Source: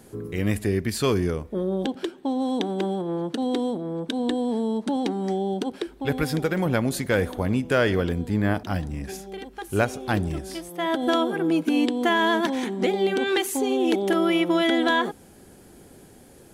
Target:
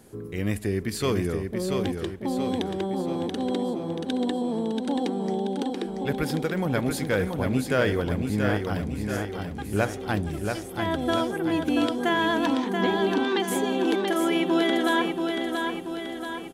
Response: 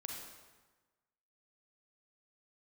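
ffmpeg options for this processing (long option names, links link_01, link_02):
-filter_complex "[0:a]asettb=1/sr,asplit=3[link_01][link_02][link_03];[link_01]atrim=end=12.464[link_04];[link_02]atrim=start=12.46:end=13.48,asetpts=PTS-STARTPTS,afade=type=in:duration=0.004:curve=qsin,afade=type=out:start_time=1.016:duration=0.004:curve=qsin,highpass=170,equalizer=frequency=180:width_type=q:width=4:gain=7,equalizer=frequency=270:width_type=q:width=4:gain=5,equalizer=frequency=510:width_type=q:width=4:gain=-4,equalizer=frequency=1000:width_type=q:width=4:gain=10,equalizer=frequency=2200:width_type=q:width=4:gain=-5,lowpass=frequency=5700:width=0.5412,lowpass=frequency=5700:width=1.3066[link_05];[link_03]atrim=start=13.476[link_06];[link_04][link_05]acrossfade=duration=0.004:curve1=hsin:curve2=qsin[link_07];[link_07][link_06]acrossfade=duration=0.004:curve1=qsin:curve2=hsin,aecho=1:1:682|1364|2046|2728|3410|4092|4774:0.562|0.298|0.158|0.0837|0.0444|0.0235|0.0125,volume=-3dB"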